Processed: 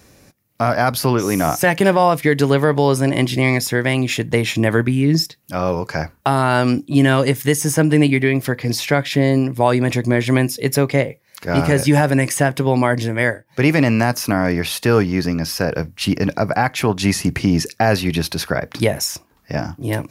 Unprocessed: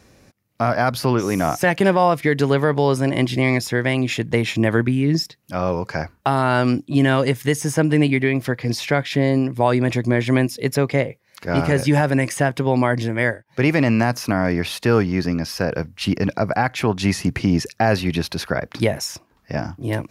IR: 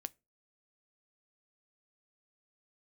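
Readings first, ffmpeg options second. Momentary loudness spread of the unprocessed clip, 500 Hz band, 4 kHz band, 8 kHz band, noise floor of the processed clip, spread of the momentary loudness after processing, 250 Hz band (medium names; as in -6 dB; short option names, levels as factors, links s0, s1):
7 LU, +2.0 dB, +3.5 dB, +6.5 dB, -56 dBFS, 7 LU, +2.0 dB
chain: -filter_complex "[0:a]highshelf=f=8800:g=11,asplit=2[s0][s1];[1:a]atrim=start_sample=2205,afade=t=out:st=0.14:d=0.01,atrim=end_sample=6615[s2];[s1][s2]afir=irnorm=-1:irlink=0,volume=3.76[s3];[s0][s3]amix=inputs=2:normalize=0,volume=0.355"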